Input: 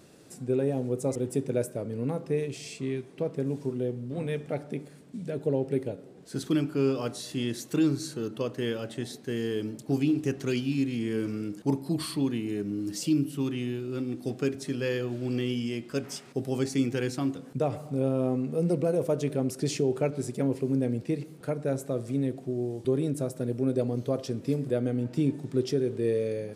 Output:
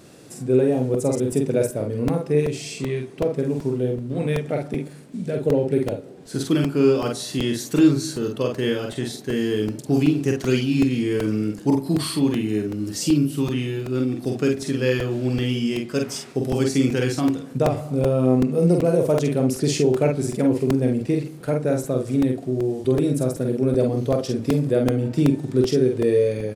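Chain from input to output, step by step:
double-tracking delay 47 ms −3.5 dB
regular buffer underruns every 0.38 s, samples 128, repeat, from 0:00.94
level +6.5 dB

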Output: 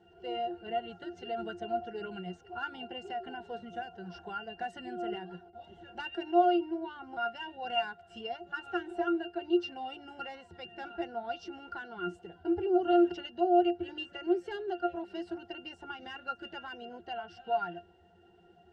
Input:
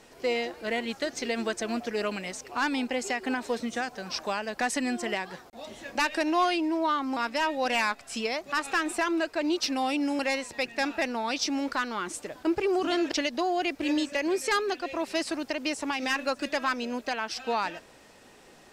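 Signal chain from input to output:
spectral magnitudes quantised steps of 15 dB
parametric band 230 Hz −6.5 dB 0.76 octaves
resonances in every octave F, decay 0.14 s
level +7.5 dB

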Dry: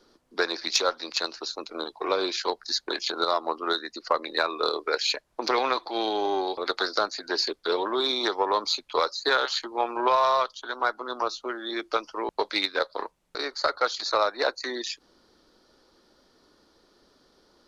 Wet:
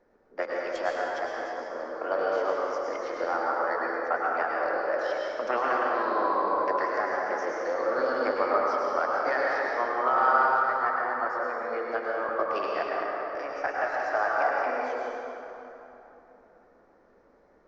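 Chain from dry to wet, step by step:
low-pass filter 1,200 Hz 12 dB per octave
formants moved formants +4 semitones
dense smooth reverb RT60 3.3 s, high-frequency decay 0.6×, pre-delay 90 ms, DRR −4 dB
level −3.5 dB

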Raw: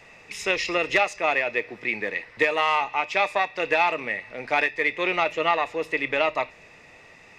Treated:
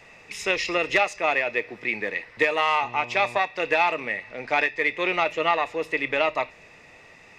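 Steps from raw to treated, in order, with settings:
0:02.82–0:03.37: hum with harmonics 120 Hz, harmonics 9, −43 dBFS −2 dB per octave
0:04.24–0:04.81: low-pass filter 8,600 Hz 24 dB per octave

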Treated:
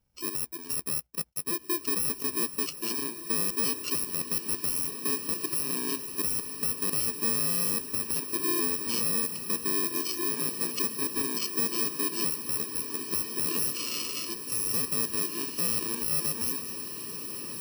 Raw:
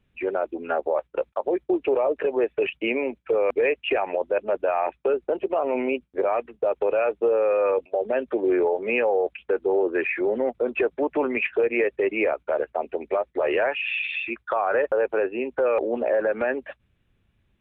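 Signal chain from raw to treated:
samples in bit-reversed order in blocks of 64 samples
feedback delay with all-pass diffusion 1,738 ms, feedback 63%, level −8.5 dB
level −7 dB

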